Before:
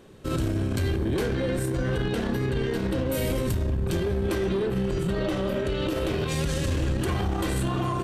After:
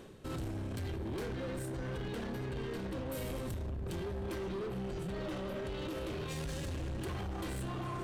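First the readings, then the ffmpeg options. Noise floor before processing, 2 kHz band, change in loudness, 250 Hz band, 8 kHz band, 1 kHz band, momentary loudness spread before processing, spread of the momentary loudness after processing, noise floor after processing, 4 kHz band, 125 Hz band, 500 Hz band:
−29 dBFS, −12.0 dB, −12.5 dB, −13.0 dB, −12.0 dB, −10.5 dB, 1 LU, 1 LU, −40 dBFS, −12.0 dB, −13.0 dB, −12.5 dB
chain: -af "areverse,acompressor=mode=upward:threshold=-28dB:ratio=2.5,areverse,alimiter=limit=-23dB:level=0:latency=1:release=53,asoftclip=type=hard:threshold=-29.5dB,volume=-6.5dB"

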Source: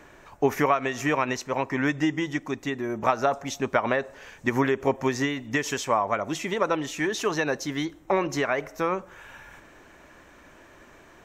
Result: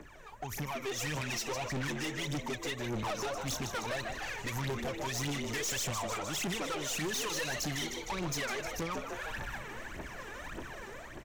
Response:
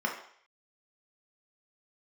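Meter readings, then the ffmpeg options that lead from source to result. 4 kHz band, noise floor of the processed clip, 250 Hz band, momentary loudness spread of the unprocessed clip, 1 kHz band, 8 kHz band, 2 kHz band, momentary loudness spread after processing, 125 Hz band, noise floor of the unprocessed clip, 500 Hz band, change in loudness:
−0.5 dB, −48 dBFS, −11.5 dB, 6 LU, −11.5 dB, +1.0 dB, −7.5 dB, 10 LU, −4.0 dB, −52 dBFS, −12.5 dB, −9.5 dB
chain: -filter_complex "[0:a]acrossover=split=130|3000[link_01][link_02][link_03];[link_02]acompressor=threshold=-36dB:ratio=6[link_04];[link_01][link_04][link_03]amix=inputs=3:normalize=0,aphaser=in_gain=1:out_gain=1:delay=2.6:decay=0.8:speed=1.7:type=triangular,dynaudnorm=framelen=350:gausssize=5:maxgain=11dB,asplit=2[link_05][link_06];[link_06]asplit=7[link_07][link_08][link_09][link_10][link_11][link_12][link_13];[link_07]adelay=153,afreqshift=98,volume=-11.5dB[link_14];[link_08]adelay=306,afreqshift=196,volume=-15.8dB[link_15];[link_09]adelay=459,afreqshift=294,volume=-20.1dB[link_16];[link_10]adelay=612,afreqshift=392,volume=-24.4dB[link_17];[link_11]adelay=765,afreqshift=490,volume=-28.7dB[link_18];[link_12]adelay=918,afreqshift=588,volume=-33dB[link_19];[link_13]adelay=1071,afreqshift=686,volume=-37.3dB[link_20];[link_14][link_15][link_16][link_17][link_18][link_19][link_20]amix=inputs=7:normalize=0[link_21];[link_05][link_21]amix=inputs=2:normalize=0,aeval=exprs='(tanh(20*val(0)+0.25)-tanh(0.25))/20':channel_layout=same,volume=-6.5dB"

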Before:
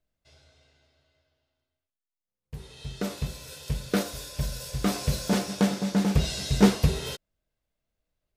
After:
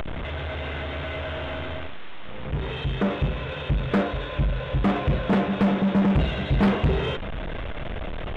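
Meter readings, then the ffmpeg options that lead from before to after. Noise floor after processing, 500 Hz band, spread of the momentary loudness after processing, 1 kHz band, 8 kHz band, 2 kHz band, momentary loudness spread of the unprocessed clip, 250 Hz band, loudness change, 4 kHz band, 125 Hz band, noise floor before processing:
−32 dBFS, +5.5 dB, 13 LU, +7.0 dB, below −20 dB, +7.5 dB, 19 LU, +3.0 dB, +1.5 dB, 0.0 dB, +4.5 dB, below −85 dBFS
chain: -filter_complex "[0:a]aeval=exprs='val(0)+0.5*0.0376*sgn(val(0))':channel_layout=same,acrossover=split=2700[link_01][link_02];[link_02]acompressor=threshold=-44dB:ratio=4:attack=1:release=60[link_03];[link_01][link_03]amix=inputs=2:normalize=0,aresample=8000,aresample=44100,aresample=11025,asoftclip=type=tanh:threshold=-21.5dB,aresample=44100,aeval=exprs='0.0891*(cos(1*acos(clip(val(0)/0.0891,-1,1)))-cos(1*PI/2))+0.00251*(cos(7*acos(clip(val(0)/0.0891,-1,1)))-cos(7*PI/2))':channel_layout=same,asplit=2[link_04][link_05];[link_05]acompressor=mode=upward:threshold=-32dB:ratio=2.5,volume=0dB[link_06];[link_04][link_06]amix=inputs=2:normalize=0"

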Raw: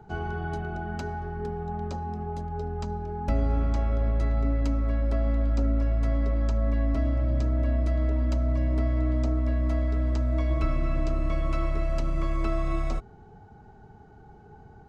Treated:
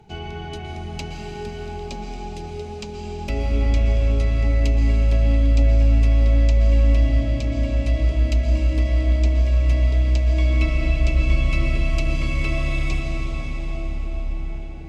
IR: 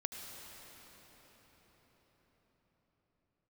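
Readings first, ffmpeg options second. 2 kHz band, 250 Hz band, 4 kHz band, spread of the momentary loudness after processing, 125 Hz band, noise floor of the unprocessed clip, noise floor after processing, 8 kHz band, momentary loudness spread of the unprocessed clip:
+9.5 dB, +2.5 dB, +14.0 dB, 15 LU, +7.5 dB, −51 dBFS, −32 dBFS, can't be measured, 7 LU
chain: -filter_complex "[0:a]highshelf=frequency=1900:width_type=q:width=3:gain=8.5[link_01];[1:a]atrim=start_sample=2205,asetrate=27342,aresample=44100[link_02];[link_01][link_02]afir=irnorm=-1:irlink=0"

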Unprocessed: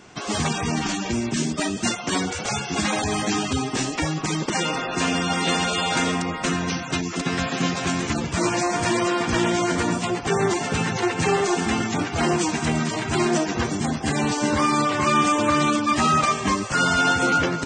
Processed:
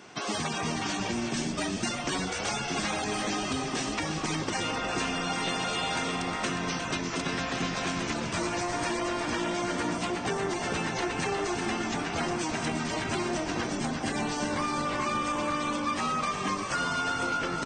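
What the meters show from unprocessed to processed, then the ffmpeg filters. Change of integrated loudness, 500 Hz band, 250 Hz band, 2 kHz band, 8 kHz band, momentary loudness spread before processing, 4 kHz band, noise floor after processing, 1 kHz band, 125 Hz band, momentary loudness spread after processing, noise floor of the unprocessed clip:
−7.5 dB, −7.5 dB, −8.5 dB, −7.0 dB, −7.5 dB, 6 LU, −6.0 dB, −34 dBFS, −7.5 dB, −9.5 dB, 2 LU, −32 dBFS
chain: -filter_complex "[0:a]highpass=frequency=220:poles=1,equalizer=frequency=7200:width=7.2:gain=-7,acompressor=threshold=-27dB:ratio=6,asplit=2[link_01][link_02];[link_02]asplit=7[link_03][link_04][link_05][link_06][link_07][link_08][link_09];[link_03]adelay=358,afreqshift=-52,volume=-8dB[link_10];[link_04]adelay=716,afreqshift=-104,volume=-12.9dB[link_11];[link_05]adelay=1074,afreqshift=-156,volume=-17.8dB[link_12];[link_06]adelay=1432,afreqshift=-208,volume=-22.6dB[link_13];[link_07]adelay=1790,afreqshift=-260,volume=-27.5dB[link_14];[link_08]adelay=2148,afreqshift=-312,volume=-32.4dB[link_15];[link_09]adelay=2506,afreqshift=-364,volume=-37.3dB[link_16];[link_10][link_11][link_12][link_13][link_14][link_15][link_16]amix=inputs=7:normalize=0[link_17];[link_01][link_17]amix=inputs=2:normalize=0,volume=-1dB"

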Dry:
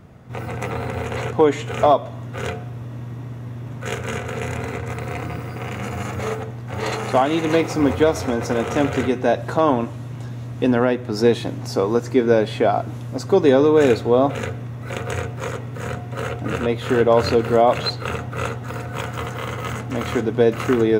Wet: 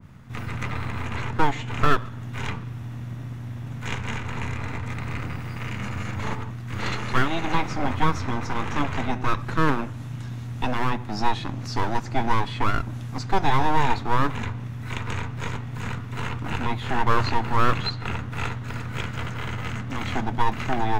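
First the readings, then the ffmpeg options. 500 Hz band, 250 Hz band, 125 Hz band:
−15.5 dB, −8.0 dB, −2.0 dB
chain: -filter_complex "[0:a]acrossover=split=310|1400|6200[link_01][link_02][link_03][link_04];[link_01]alimiter=limit=-23.5dB:level=0:latency=1[link_05];[link_02]aeval=exprs='abs(val(0))':channel_layout=same[link_06];[link_04]acompressor=threshold=-58dB:ratio=6[link_07];[link_05][link_06][link_03][link_07]amix=inputs=4:normalize=0,bandreject=frequency=58.67:width_type=h:width=4,bandreject=frequency=117.34:width_type=h:width=4,bandreject=frequency=176.01:width_type=h:width=4,adynamicequalizer=threshold=0.0126:dfrequency=1900:dqfactor=0.7:tfrequency=1900:tqfactor=0.7:attack=5:release=100:ratio=0.375:range=2:mode=cutabove:tftype=highshelf"

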